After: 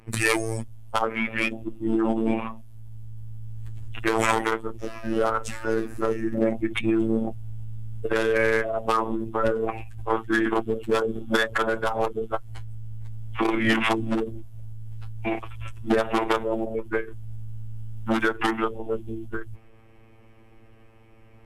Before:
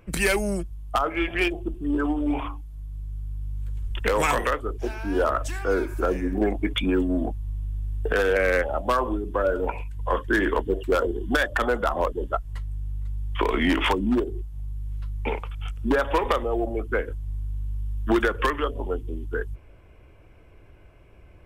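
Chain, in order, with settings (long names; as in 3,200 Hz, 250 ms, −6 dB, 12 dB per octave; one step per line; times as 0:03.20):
phases set to zero 145 Hz
phase-vocoder pitch shift with formants kept −4.5 semitones
level +2.5 dB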